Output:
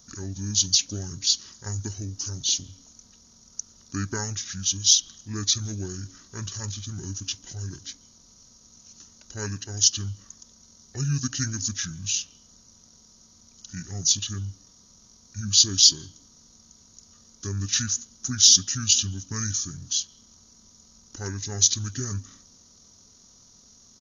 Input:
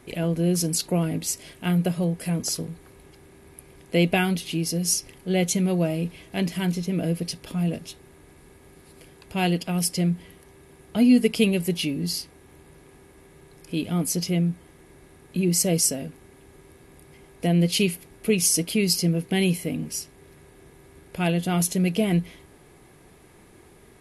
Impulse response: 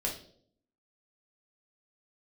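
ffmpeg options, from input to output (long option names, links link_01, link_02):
-filter_complex "[0:a]asetrate=25476,aresample=44100,atempo=1.73107,aexciter=amount=10.9:drive=2.7:freq=3600,asplit=2[link_01][link_02];[link_02]asplit=3[link_03][link_04][link_05];[link_03]bandpass=frequency=270:width_type=q:width=8,volume=0dB[link_06];[link_04]bandpass=frequency=2290:width_type=q:width=8,volume=-6dB[link_07];[link_05]bandpass=frequency=3010:width_type=q:width=8,volume=-9dB[link_08];[link_06][link_07][link_08]amix=inputs=3:normalize=0[link_09];[1:a]atrim=start_sample=2205,adelay=142[link_10];[link_09][link_10]afir=irnorm=-1:irlink=0,volume=-18dB[link_11];[link_01][link_11]amix=inputs=2:normalize=0,volume=-9.5dB"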